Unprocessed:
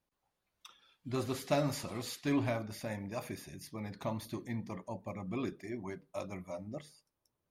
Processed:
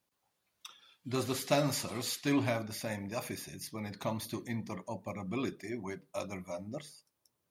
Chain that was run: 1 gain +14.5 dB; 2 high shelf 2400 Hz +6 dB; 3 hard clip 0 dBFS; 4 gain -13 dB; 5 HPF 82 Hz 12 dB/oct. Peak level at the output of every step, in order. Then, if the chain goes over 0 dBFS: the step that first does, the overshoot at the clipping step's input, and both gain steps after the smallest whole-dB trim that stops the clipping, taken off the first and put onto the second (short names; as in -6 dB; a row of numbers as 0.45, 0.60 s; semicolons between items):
-4.5, -2.5, -2.5, -15.5, -14.5 dBFS; no overload